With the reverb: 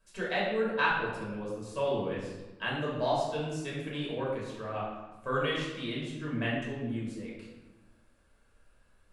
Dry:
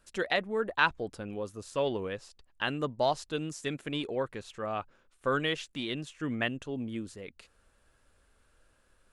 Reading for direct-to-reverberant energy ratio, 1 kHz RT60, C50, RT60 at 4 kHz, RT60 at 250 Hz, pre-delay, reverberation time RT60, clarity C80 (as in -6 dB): -6.5 dB, 1.1 s, 1.0 dB, 0.75 s, 1.6 s, 3 ms, 1.1 s, 3.5 dB